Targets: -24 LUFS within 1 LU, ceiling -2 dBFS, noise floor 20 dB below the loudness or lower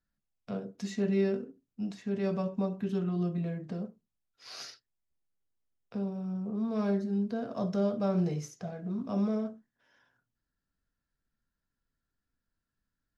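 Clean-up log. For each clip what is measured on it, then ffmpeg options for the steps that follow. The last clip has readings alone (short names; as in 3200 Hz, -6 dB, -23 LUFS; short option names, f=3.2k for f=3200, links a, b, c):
loudness -33.0 LUFS; peak -19.0 dBFS; loudness target -24.0 LUFS
-> -af "volume=9dB"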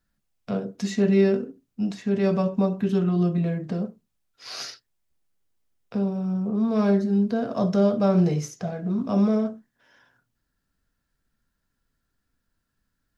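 loudness -24.0 LUFS; peak -10.0 dBFS; noise floor -78 dBFS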